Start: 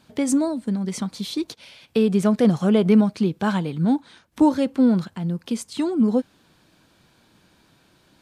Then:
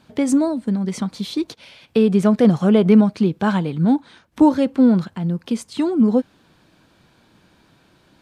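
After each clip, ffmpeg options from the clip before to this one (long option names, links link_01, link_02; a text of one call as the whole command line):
ffmpeg -i in.wav -af "highshelf=frequency=4500:gain=-7,volume=3.5dB" out.wav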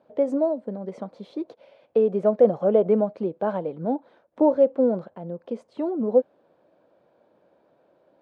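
ffmpeg -i in.wav -af "bandpass=frequency=560:width_type=q:width=4.2:csg=0,volume=6dB" out.wav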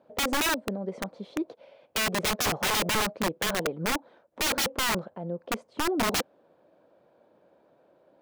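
ffmpeg -i in.wav -af "aeval=exprs='(mod(11.2*val(0)+1,2)-1)/11.2':channel_layout=same" out.wav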